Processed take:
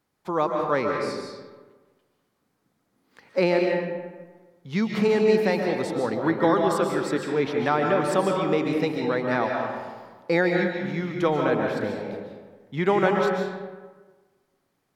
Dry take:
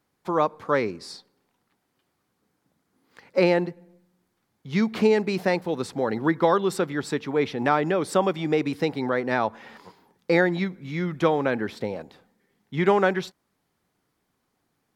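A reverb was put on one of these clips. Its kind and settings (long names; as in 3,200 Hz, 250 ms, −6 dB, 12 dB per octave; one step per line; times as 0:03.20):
comb and all-pass reverb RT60 1.4 s, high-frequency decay 0.55×, pre-delay 100 ms, DRR 1 dB
level −2 dB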